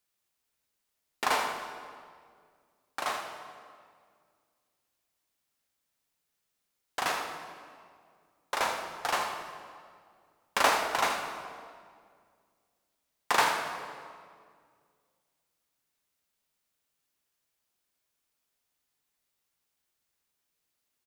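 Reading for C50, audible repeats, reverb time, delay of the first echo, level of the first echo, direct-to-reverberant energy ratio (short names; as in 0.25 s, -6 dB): 4.5 dB, 1, 2.0 s, 81 ms, -10.0 dB, 3.0 dB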